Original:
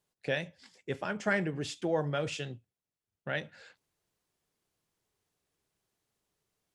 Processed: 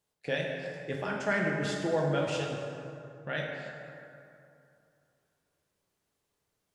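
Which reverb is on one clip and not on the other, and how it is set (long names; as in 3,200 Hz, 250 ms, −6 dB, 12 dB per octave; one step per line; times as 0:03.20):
dense smooth reverb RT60 2.7 s, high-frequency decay 0.5×, DRR −1.5 dB
level −1.5 dB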